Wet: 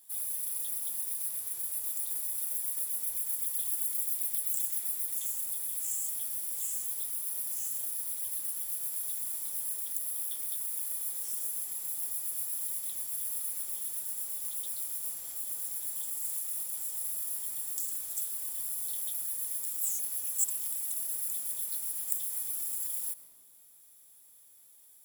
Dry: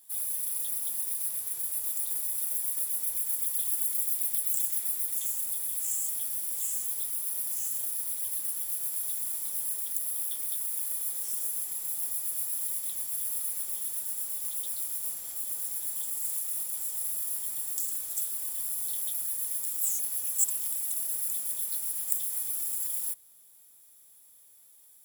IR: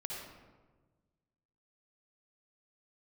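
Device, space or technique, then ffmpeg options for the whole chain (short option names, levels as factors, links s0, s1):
ducked reverb: -filter_complex "[0:a]asplit=3[s0][s1][s2];[1:a]atrim=start_sample=2205[s3];[s1][s3]afir=irnorm=-1:irlink=0[s4];[s2]apad=whole_len=1104279[s5];[s4][s5]sidechaincompress=threshold=0.0112:ratio=8:attack=5.2:release=129,volume=0.501[s6];[s0][s6]amix=inputs=2:normalize=0,volume=0.668"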